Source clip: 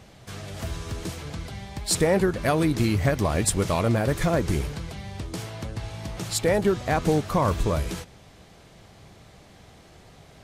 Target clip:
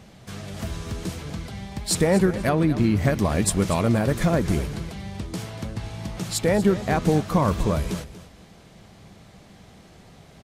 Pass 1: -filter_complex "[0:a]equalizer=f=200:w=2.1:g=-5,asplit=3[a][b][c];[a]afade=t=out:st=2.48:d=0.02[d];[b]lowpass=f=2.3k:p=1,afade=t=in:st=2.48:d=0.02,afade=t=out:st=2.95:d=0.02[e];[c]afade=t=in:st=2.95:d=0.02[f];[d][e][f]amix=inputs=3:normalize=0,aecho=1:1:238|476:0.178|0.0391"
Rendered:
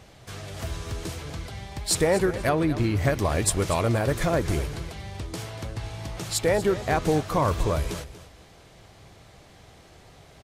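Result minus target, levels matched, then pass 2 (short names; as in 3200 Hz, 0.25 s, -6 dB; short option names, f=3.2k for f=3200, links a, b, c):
250 Hz band -3.5 dB
-filter_complex "[0:a]equalizer=f=200:w=2.1:g=6,asplit=3[a][b][c];[a]afade=t=out:st=2.48:d=0.02[d];[b]lowpass=f=2.3k:p=1,afade=t=in:st=2.48:d=0.02,afade=t=out:st=2.95:d=0.02[e];[c]afade=t=in:st=2.95:d=0.02[f];[d][e][f]amix=inputs=3:normalize=0,aecho=1:1:238|476:0.178|0.0391"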